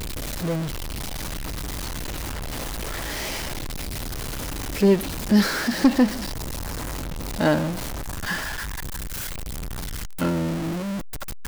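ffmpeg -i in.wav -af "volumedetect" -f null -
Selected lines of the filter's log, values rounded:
mean_volume: -25.7 dB
max_volume: -9.7 dB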